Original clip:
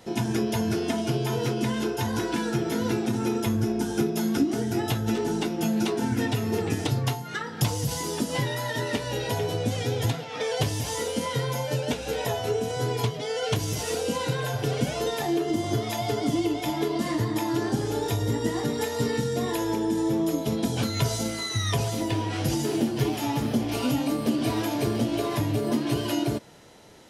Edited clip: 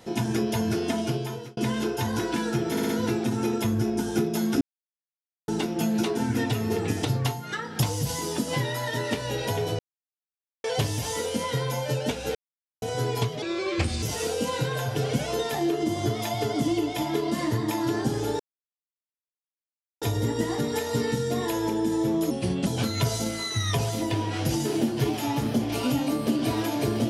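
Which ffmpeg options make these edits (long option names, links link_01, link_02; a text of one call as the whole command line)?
ffmpeg -i in.wav -filter_complex "[0:a]asplit=16[link_01][link_02][link_03][link_04][link_05][link_06][link_07][link_08][link_09][link_10][link_11][link_12][link_13][link_14][link_15][link_16];[link_01]atrim=end=1.57,asetpts=PTS-STARTPTS,afade=type=out:start_time=1.04:duration=0.53[link_17];[link_02]atrim=start=1.57:end=2.772,asetpts=PTS-STARTPTS,afade=type=in:duration=0.004:curve=hsin[link_18];[link_03]atrim=start=2.708:end=2.772[link_19];[link_04]atrim=start=2.708:end=2.772[link_20];[link_05]atrim=start=2.708:end=4.43,asetpts=PTS-STARTPTS,afade=type=out:start_time=1.718:duration=0.004:curve=hsin[link_21];[link_06]atrim=start=4.43:end=5.3,asetpts=PTS-STARTPTS,volume=0[link_22];[link_07]atrim=start=5.3:end=9.61,asetpts=PTS-STARTPTS,afade=type=in:duration=0.004:curve=hsin,afade=type=out:start_time=4.306:duration=0.004:curve=hsin[link_23];[link_08]atrim=start=9.61:end=10.46,asetpts=PTS-STARTPTS,volume=0[link_24];[link_09]atrim=start=10.46:end=12.17,asetpts=PTS-STARTPTS,afade=type=in:duration=0.004:curve=hsin,afade=type=out:start_time=1.706:duration=0.004:curve=hsin[link_25];[link_10]atrim=start=12.17:end=12.64,asetpts=PTS-STARTPTS,volume=0[link_26];[link_11]atrim=start=12.64:end=13.244,asetpts=PTS-STARTPTS,afade=type=in:duration=0.004:curve=hsin[link_27];[link_12]atrim=start=13.24:end=13.7,asetpts=PTS-STARTPTS,asetrate=33516,aresample=44100,atrim=end_sample=26692,asetpts=PTS-STARTPTS[link_28];[link_13]atrim=start=13.696:end=18.07,asetpts=PTS-STARTPTS,afade=type=out:start_time=4.37:duration=0.004:curve=hsin,apad=pad_dur=1.62[link_29];[link_14]atrim=start=18.07:end=20.364,asetpts=PTS-STARTPTS,afade=type=in:duration=0.004:curve=hsin[link_30];[link_15]atrim=start=20.36:end=20.66,asetpts=PTS-STARTPTS,asetrate=36603,aresample=44100[link_31];[link_16]atrim=start=20.656[link_32];[link_17][link_18]concat=n=2:v=0:a=1[link_33];[link_33][link_19]acrossfade=duration=0.004:curve1=hsin:curve2=hsin[link_34];[link_34][link_20]acrossfade=duration=0.004:curve1=hsin:curve2=hsin[link_35];[link_21][link_22][link_23][link_24][link_25][link_26][link_27]concat=n=7:v=0:a=1[link_36];[link_35][link_36]acrossfade=duration=0.004:curve1=hsin:curve2=hsin[link_37];[link_37][link_28]acrossfade=duration=0.004:curve1=hsin:curve2=hsin[link_38];[link_29][link_30]concat=n=2:v=0:a=1[link_39];[link_38][link_39]acrossfade=duration=0.004:curve1=hsin:curve2=hsin[link_40];[link_40][link_31]acrossfade=duration=0.004:curve1=hsin:curve2=hsin[link_41];[link_41][link_32]acrossfade=duration=0.004:curve1=hsin:curve2=hsin" out.wav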